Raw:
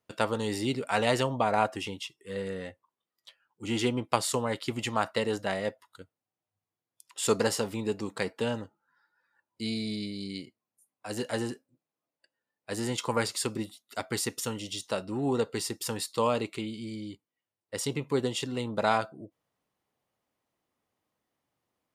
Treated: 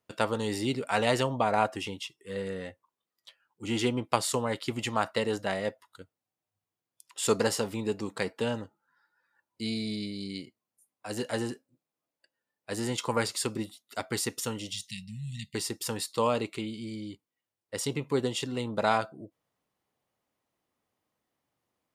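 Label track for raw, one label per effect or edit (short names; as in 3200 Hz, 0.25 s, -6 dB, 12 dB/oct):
14.710000	15.550000	brick-wall FIR band-stop 220–1800 Hz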